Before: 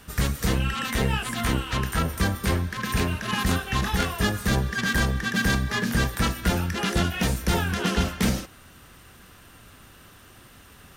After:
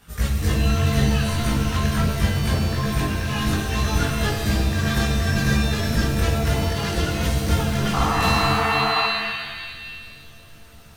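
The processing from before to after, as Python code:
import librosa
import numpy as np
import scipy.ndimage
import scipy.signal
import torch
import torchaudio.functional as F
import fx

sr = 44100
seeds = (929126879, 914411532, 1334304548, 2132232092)

y = fx.chorus_voices(x, sr, voices=4, hz=0.73, base_ms=19, depth_ms=1.2, mix_pct=55)
y = fx.spec_paint(y, sr, seeds[0], shape='noise', start_s=7.93, length_s=1.15, low_hz=670.0, high_hz=1400.0, level_db=-25.0)
y = fx.rev_shimmer(y, sr, seeds[1], rt60_s=1.6, semitones=7, shimmer_db=-2, drr_db=4.0)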